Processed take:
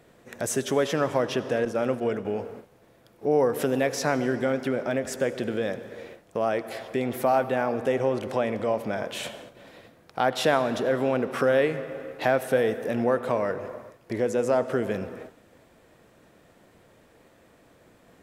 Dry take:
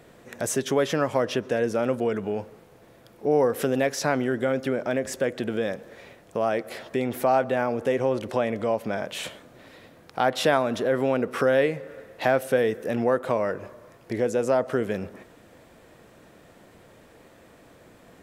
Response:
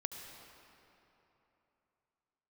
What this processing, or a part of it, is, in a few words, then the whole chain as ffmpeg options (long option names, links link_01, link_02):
keyed gated reverb: -filter_complex "[0:a]asplit=3[link_01][link_02][link_03];[1:a]atrim=start_sample=2205[link_04];[link_02][link_04]afir=irnorm=-1:irlink=0[link_05];[link_03]apad=whole_len=803540[link_06];[link_05][link_06]sidechaingate=range=-33dB:threshold=-48dB:ratio=16:detection=peak,volume=-2.5dB[link_07];[link_01][link_07]amix=inputs=2:normalize=0,asettb=1/sr,asplit=3[link_08][link_09][link_10];[link_08]atrim=end=1.654[link_11];[link_09]atrim=start=1.65:end=2.25,asetpts=PTS-STARTPTS,afade=type=in:duration=0.004:curve=qsin,afade=type=out:start_time=0.596:duration=0.004:curve=qsin,agate=range=-33dB:threshold=-20dB:ratio=3:detection=peak[link_12];[link_10]atrim=start=2.246[link_13];[link_11][link_12]acrossfade=duration=0.004:curve1=hsin:curve2=qsin[link_14];[link_14][link_13]acrossfade=duration=0.004:curve1=qsin:curve2=hsin,volume=-5dB"